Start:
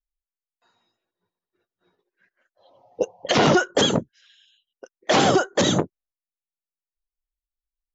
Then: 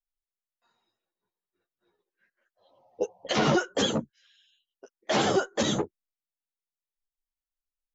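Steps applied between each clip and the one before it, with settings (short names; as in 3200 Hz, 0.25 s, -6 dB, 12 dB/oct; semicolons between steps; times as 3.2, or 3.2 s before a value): ensemble effect; gain -3.5 dB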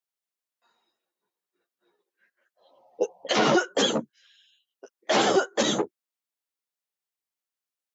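HPF 240 Hz 12 dB/oct; gain +3.5 dB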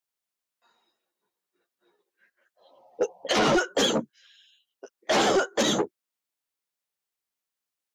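soft clip -18.5 dBFS, distortion -13 dB; gain +2.5 dB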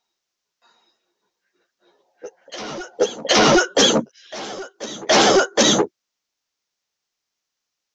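resonant high shelf 7600 Hz -9.5 dB, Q 3; reverse echo 0.77 s -17.5 dB; gain +7.5 dB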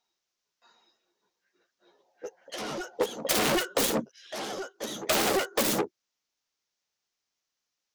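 self-modulated delay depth 0.35 ms; compressor 6:1, threshold -19 dBFS, peak gain reduction 8 dB; gain -4 dB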